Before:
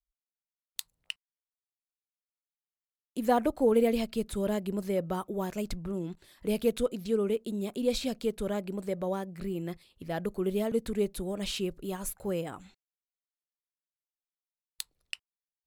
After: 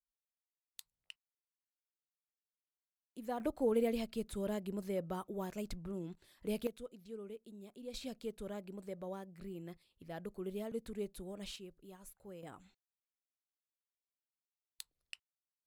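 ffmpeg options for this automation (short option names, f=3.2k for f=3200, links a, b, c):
-af "asetnsamples=n=441:p=0,asendcmd='3.4 volume volume -8dB;6.67 volume volume -19dB;7.94 volume volume -12dB;11.56 volume volume -19dB;12.43 volume volume -11dB',volume=-15dB"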